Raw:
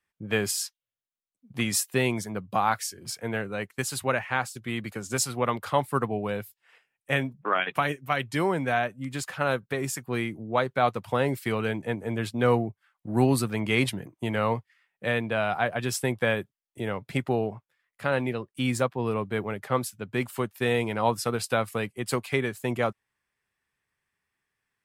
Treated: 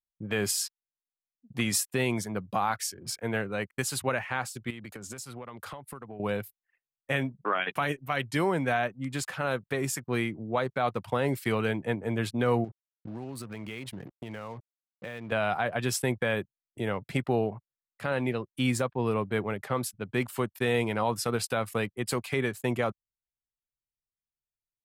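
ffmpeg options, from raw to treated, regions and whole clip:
-filter_complex "[0:a]asettb=1/sr,asplit=3[s0][s1][s2];[s0]atrim=end=4.704[s3];[s1]atrim=start=4.7:end=6.2,asetpts=PTS-STARTPTS,afade=t=in:d=0.004:c=qsin,afade=t=out:st=1.496:d=0.004:c=qsin,acompressor=threshold=0.0141:ratio=16:attack=3.2:release=140:knee=1:detection=peak,highshelf=f=8400:g=2.5[s4];[s2]atrim=start=6.196[s5];[s3][s4]acrossfade=d=0.004:c1=hsin:c2=qsin[s6];[s6][s5]acrossfade=d=0.004:c1=qsin:c2=hsin,asettb=1/sr,asplit=3[s7][s8][s9];[s7]atrim=end=12.644[s10];[s8]atrim=start=12.64:end=15.32,asetpts=PTS-STARTPTS,afade=t=in:d=0.004:c=qsin,afade=t=out:st=2.676:d=0.004:c=qsin,acompressor=threshold=0.0178:ratio=10:attack=3.2:release=140:knee=1:detection=peak,aeval=exprs='val(0)*gte(abs(val(0)),0.00316)':c=same[s11];[s9]atrim=start=15.316[s12];[s10][s11]acrossfade=d=0.004:c1=hsin:c2=qsin[s13];[s13][s12]acrossfade=d=0.004:c1=qsin:c2=hsin,anlmdn=0.00631,alimiter=limit=0.158:level=0:latency=1:release=58"

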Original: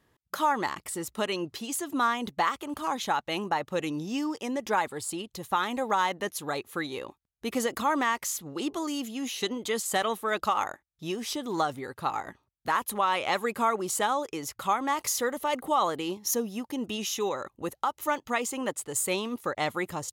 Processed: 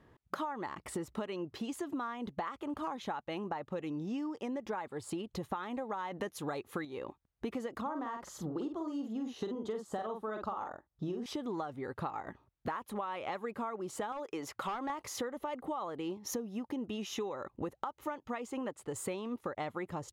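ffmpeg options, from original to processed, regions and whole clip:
-filter_complex "[0:a]asettb=1/sr,asplit=3[s0][s1][s2];[s0]atrim=end=6.124[s3];[s1]atrim=start=6.12:end=6.85,asetpts=PTS-STARTPTS,afade=t=in:d=0.004:c=qsin,afade=t=out:st=0.726:d=0.004:c=qsin,highshelf=f=4900:g=7,acontrast=76[s4];[s2]atrim=start=6.846[s5];[s3][s4]acrossfade=d=0.004:c1=hsin:c2=qsin[s6];[s6][s5]acrossfade=d=0.004:c1=qsin:c2=hsin,asettb=1/sr,asplit=3[s7][s8][s9];[s7]atrim=end=7.814[s10];[s8]atrim=start=7.81:end=11.26,asetpts=PTS-STARTPTS,afade=t=in:d=0.004:c=qsin,afade=t=out:st=3.446:d=0.004:c=qsin,lowpass=f=3600:p=1,equalizer=f=2300:t=o:w=0.73:g=-12.5,asplit=2[s11][s12];[s12]adelay=46,volume=0.531[s13];[s11][s13]amix=inputs=2:normalize=0,atrim=end_sample=152145[s14];[s9]atrim=start=11.256[s15];[s10][s14]acrossfade=d=0.004:c1=hsin:c2=qsin[s16];[s16][s15]acrossfade=d=0.004:c1=qsin:c2=hsin,asettb=1/sr,asplit=3[s17][s18][s19];[s17]atrim=end=14.124[s20];[s18]atrim=start=14.12:end=14.9,asetpts=PTS-STARTPTS,afade=t=in:d=0.004:c=qsin,afade=t=out:st=0.776:d=0.004:c=qsin,highpass=f=410:p=1,volume=23.7,asoftclip=hard,volume=0.0422[s21];[s19]atrim=start=14.896[s22];[s20][s21]acrossfade=d=0.004:c1=hsin:c2=qsin[s23];[s23][s22]acrossfade=d=0.004:c1=qsin:c2=hsin,lowpass=f=1200:p=1,acompressor=threshold=0.00794:ratio=16,volume=2.37"

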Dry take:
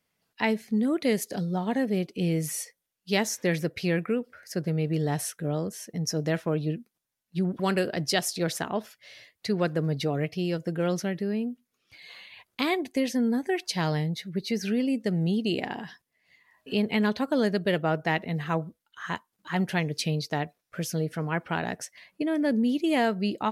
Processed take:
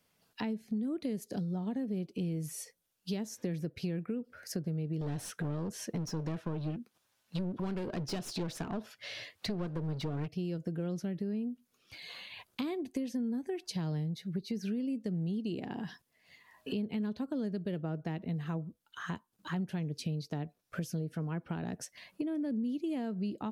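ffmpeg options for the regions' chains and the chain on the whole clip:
-filter_complex "[0:a]asettb=1/sr,asplit=3[s0][s1][s2];[s0]atrim=end=5.014[s3];[s1]atrim=start=5.01:end=10.28,asetpts=PTS-STARTPTS,afade=t=in:d=0.004:c=qsin,afade=t=out:st=5.266:d=0.004:c=qsin,equalizer=f=90:t=o:w=0.86:g=9.5,aeval=exprs='clip(val(0),-1,0.0224)':c=same,asplit=2[s4][s5];[s5]highpass=f=720:p=1,volume=7.94,asoftclip=type=tanh:threshold=0.237[s6];[s4][s6]amix=inputs=2:normalize=0,lowpass=f=3200:p=1,volume=0.501[s7];[s2]atrim=start=10.276[s8];[s3][s7]acrossfade=d=0.004:c1=hsin:c2=qsin[s9];[s9][s8]acrossfade=d=0.004:c1=qsin:c2=hsin,acrossover=split=360[s10][s11];[s11]acompressor=threshold=0.00355:ratio=2[s12];[s10][s12]amix=inputs=2:normalize=0,equalizer=f=2000:t=o:w=0.4:g=-5,acompressor=threshold=0.0112:ratio=4,volume=1.68"

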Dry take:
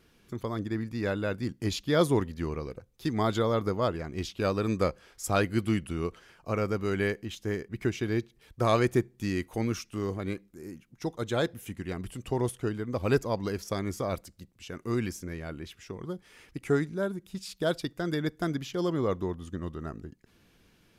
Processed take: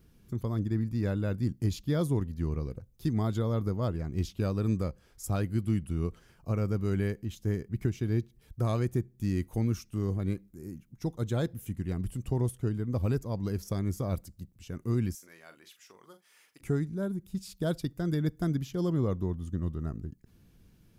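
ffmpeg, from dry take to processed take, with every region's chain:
-filter_complex "[0:a]asettb=1/sr,asplit=3[s0][s1][s2];[s0]atrim=end=15.154[s3];[s1]atrim=start=15.15:end=16.61,asetpts=PTS-STARTPTS,afade=t=in:d=0.004:c=qsin,afade=t=out:st=1.456:d=0.004:c=qsin,highpass=900,asplit=2[s4][s5];[s5]adelay=42,volume=0.316[s6];[s4][s6]amix=inputs=2:normalize=0,atrim=end_sample=64386[s7];[s2]atrim=start=16.606[s8];[s3][s7]acrossfade=d=0.004:c1=hsin:c2=qsin[s9];[s9][s8]acrossfade=d=0.004:c1=qsin:c2=hsin,bass=f=250:g=12,treble=f=4000:g=14,alimiter=limit=0.251:level=0:latency=1:release=483,equalizer=f=7100:w=0.32:g=-11,volume=0.562"

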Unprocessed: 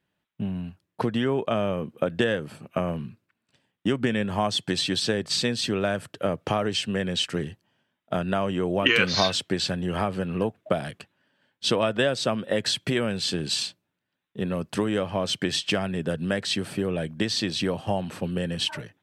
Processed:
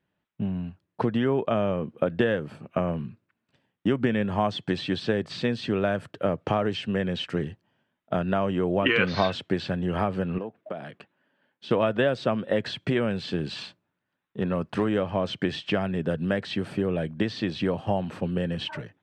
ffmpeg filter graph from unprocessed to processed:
-filter_complex "[0:a]asettb=1/sr,asplit=3[s0][s1][s2];[s0]atrim=end=10.384[s3];[s1]atrim=start=10.38:end=11.71,asetpts=PTS-STARTPTS,afade=t=in:d=0.004:c=qsin,afade=t=out:st=1.326:d=0.004:c=qsin,highpass=170,bass=f=250:g=-1,treble=f=4000:g=-7,acompressor=threshold=0.0141:ratio=2:attack=3.2:release=140:knee=1:detection=peak[s4];[s2]atrim=start=11.706[s5];[s3][s4]acrossfade=d=0.004:c1=hsin:c2=qsin[s6];[s6][s5]acrossfade=d=0.004:c1=qsin:c2=hsin,asettb=1/sr,asplit=3[s7][s8][s9];[s7]atrim=end=13.554[s10];[s8]atrim=start=13.55:end=14.89,asetpts=PTS-STARTPTS,afade=t=in:d=0.004:c=qsin,afade=t=out:st=1.336:d=0.004:c=qsin,equalizer=f=1200:t=o:w=1.4:g=4,asoftclip=type=hard:threshold=0.15[s11];[s9]atrim=start=14.886[s12];[s10][s11]acrossfade=d=0.004:c1=hsin:c2=qsin[s13];[s13][s12]acrossfade=d=0.004:c1=qsin:c2=hsin,aemphasis=mode=reproduction:type=75fm,acrossover=split=3900[s14][s15];[s15]acompressor=threshold=0.00398:ratio=4:attack=1:release=60[s16];[s14][s16]amix=inputs=2:normalize=0"

